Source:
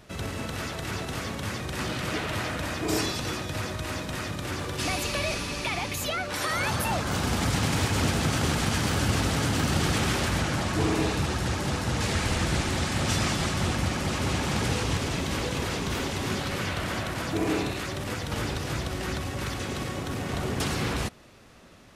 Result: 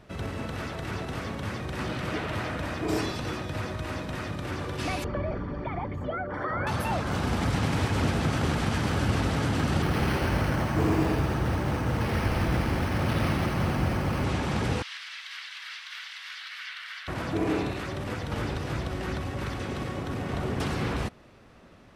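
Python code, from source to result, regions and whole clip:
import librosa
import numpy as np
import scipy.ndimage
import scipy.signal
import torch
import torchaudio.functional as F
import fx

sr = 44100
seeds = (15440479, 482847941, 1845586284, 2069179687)

y = fx.chain(x, sr, fx.envelope_sharpen(power=1.5),
    fx.savgol(points=41), at=(5.04, 6.67))
y = fx.chain(y, sr, fx.resample_bad(factor=6, down='filtered', up='hold'),
    fx.echo_split(split_hz=1000.0, low_ms=127, high_ms=83, feedback_pct=52, wet_db=-6.0), at=(9.82, 14.24))
y = fx.chain(y, sr, fx.cheby2_highpass(hz=360.0, order=4, stop_db=70),
    fx.high_shelf_res(hz=5800.0, db=-6.5, q=1.5),
    fx.notch(hz=2500.0, q=21.0), at=(14.82, 17.08))
y = fx.high_shelf(y, sr, hz=3600.0, db=-11.5)
y = fx.notch(y, sr, hz=6800.0, q=22.0)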